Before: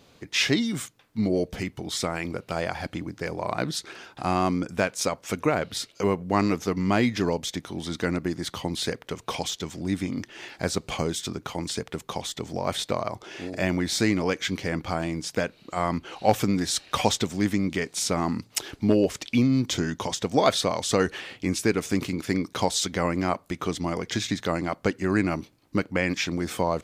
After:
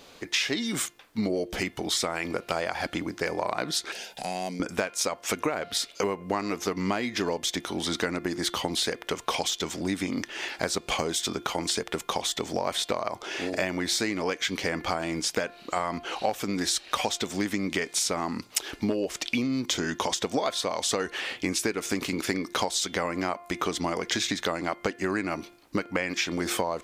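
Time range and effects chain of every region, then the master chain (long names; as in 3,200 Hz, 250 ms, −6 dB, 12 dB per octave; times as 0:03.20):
0:03.92–0:04.60: high-shelf EQ 6,600 Hz +9.5 dB + downward compressor 2 to 1, threshold −35 dBFS + phaser with its sweep stopped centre 320 Hz, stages 6
whole clip: parametric band 110 Hz −13 dB 2.1 octaves; hum removal 349 Hz, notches 10; downward compressor 12 to 1, threshold −31 dBFS; level +7.5 dB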